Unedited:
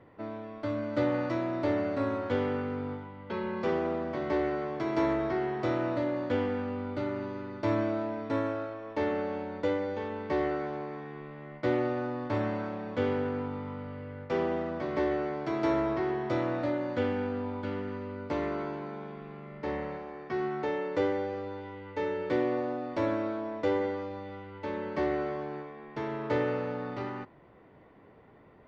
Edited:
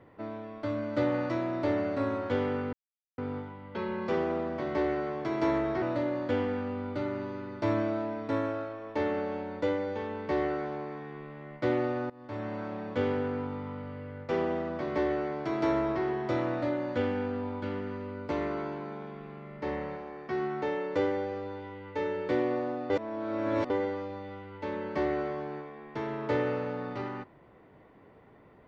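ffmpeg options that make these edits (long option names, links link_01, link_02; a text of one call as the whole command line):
ffmpeg -i in.wav -filter_complex "[0:a]asplit=6[link_01][link_02][link_03][link_04][link_05][link_06];[link_01]atrim=end=2.73,asetpts=PTS-STARTPTS,afade=type=out:start_time=2.726:duration=0.004:curve=hsin,apad=pad_dur=0.45[link_07];[link_02]atrim=start=2.73:end=5.372,asetpts=PTS-STARTPTS,afade=type=in:duration=0.004:curve=hsin[link_08];[link_03]atrim=start=5.828:end=12.11,asetpts=PTS-STARTPTS,afade=type=out:start_time=6.278:duration=0.004:curve=hsin:silence=0.0794328[link_09];[link_04]atrim=start=12.11:end=22.912,asetpts=PTS-STARTPTS,afade=type=in:duration=0.68:silence=0.0794328[link_10];[link_05]atrim=start=22.908:end=23.712,asetpts=PTS-STARTPTS,areverse[link_11];[link_06]atrim=start=23.708[link_12];[link_07][link_08]concat=n=2:v=0:a=1[link_13];[link_09][link_10]concat=n=2:v=0:a=1[link_14];[link_13][link_14]acrossfade=duration=0.004:curve1=hsin:curve2=hsin[link_15];[link_15][link_11]acrossfade=duration=0.004:curve1=hsin:curve2=hsin[link_16];[link_16][link_12]acrossfade=duration=0.004:curve1=hsin:curve2=hsin" out.wav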